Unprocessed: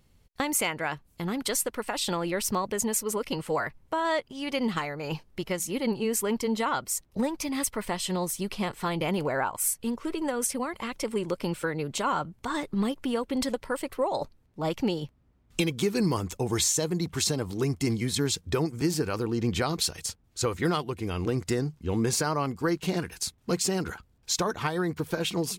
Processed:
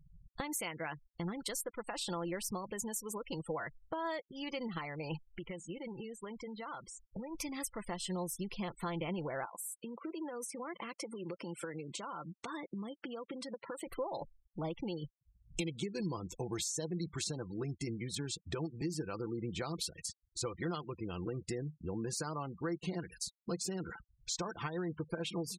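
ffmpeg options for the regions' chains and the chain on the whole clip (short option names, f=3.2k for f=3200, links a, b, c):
-filter_complex "[0:a]asettb=1/sr,asplit=3[a][b][c];[a]atrim=end=5.274[d];[b]atrim=start=5.27:end=7.35,asetpts=PTS-STARTPTS,afade=t=in:d=0.004:c=qsin,afade=t=out:st=2.076:d=0.004:c=qsin,tiltshelf=f=1.4k:g=-3,acompressor=threshold=-39dB:ratio=3:attack=3.2:release=140:knee=1:detection=peak,lowpass=f=2.4k:p=1[e];[c]atrim=start=7.346[f];[d][e]acrossfade=d=0.004:c1=hsin:c2=qsin[g];[g][f]acrossfade=d=0.004:c1=qsin:c2=hsin,asettb=1/sr,asplit=3[h][i][j];[h]atrim=end=9.454[k];[i]atrim=start=9.45:end=13.87,asetpts=PTS-STARTPTS,afade=t=in:d=0.004:c=qsin,afade=t=out:st=4.416:d=0.004:c=qsin,acompressor=threshold=-33dB:ratio=6:attack=3.2:release=140:knee=1:detection=peak,highpass=170[l];[j]atrim=start=13.866[m];[k][l]acrossfade=d=0.004:c1=hsin:c2=qsin[n];[n][m]acrossfade=d=0.004:c1=qsin:c2=hsin,acompressor=threshold=-49dB:ratio=2.5,aecho=1:1:5.9:0.36,afftfilt=real='re*gte(hypot(re,im),0.00355)':imag='im*gte(hypot(re,im),0.00355)':win_size=1024:overlap=0.75,volume=4dB"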